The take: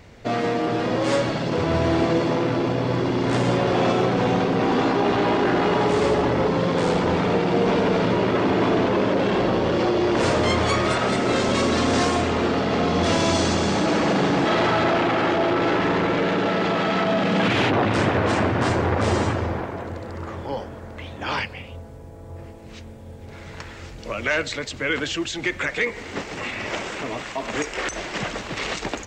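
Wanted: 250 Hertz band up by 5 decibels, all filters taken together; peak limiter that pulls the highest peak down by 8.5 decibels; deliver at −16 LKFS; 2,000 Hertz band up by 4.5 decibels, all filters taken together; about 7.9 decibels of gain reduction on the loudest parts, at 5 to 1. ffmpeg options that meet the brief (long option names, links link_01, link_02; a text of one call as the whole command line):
ffmpeg -i in.wav -af "equalizer=frequency=250:width_type=o:gain=6.5,equalizer=frequency=2000:width_type=o:gain=5.5,acompressor=threshold=-22dB:ratio=5,volume=11.5dB,alimiter=limit=-7dB:level=0:latency=1" out.wav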